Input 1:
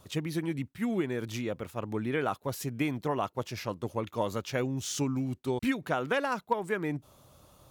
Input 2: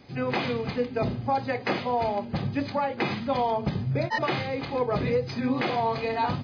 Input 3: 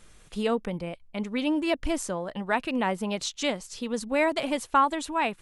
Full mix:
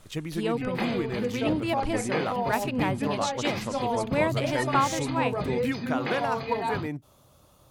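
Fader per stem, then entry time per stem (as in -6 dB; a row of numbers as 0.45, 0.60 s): -0.5, -3.5, -2.5 dB; 0.00, 0.45, 0.00 s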